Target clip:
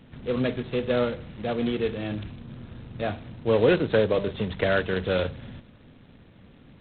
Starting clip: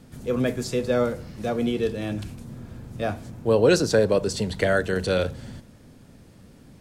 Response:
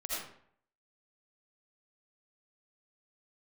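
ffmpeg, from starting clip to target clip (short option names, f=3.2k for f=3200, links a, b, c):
-filter_complex "[0:a]asettb=1/sr,asplit=3[a][b][c];[a]atrim=end=3.194[d];[b]atrim=start=3.19:end=4.31,asetpts=PTS-STARTPTS,afade=t=in:d=0.004:c=qsin,afade=t=out:st=1.116:d=0.004:c=qsin,bandreject=f=199.2:t=h:w=4,bandreject=f=398.4:t=h:w=4,bandreject=f=597.6:t=h:w=4,bandreject=f=796.8:t=h:w=4,bandreject=f=996:t=h:w=4,bandreject=f=1.1952k:t=h:w=4[e];[c]atrim=start=4.306[f];[d][e]acrossfade=d=0.004:c1=hsin:c2=qsin[g];[g][f]acrossfade=d=0.004:c1=qsin:c2=hsin,volume=-2dB" -ar 8000 -c:a adpcm_g726 -b:a 16k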